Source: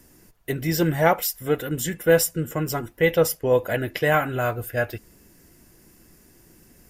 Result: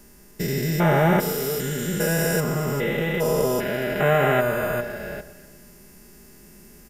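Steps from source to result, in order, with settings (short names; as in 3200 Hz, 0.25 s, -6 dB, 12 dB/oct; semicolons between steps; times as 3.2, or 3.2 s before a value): stepped spectrum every 0.4 s; comb 4.9 ms, depth 79%; echo with dull and thin repeats by turns 0.122 s, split 1300 Hz, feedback 59%, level -12.5 dB; gain +4.5 dB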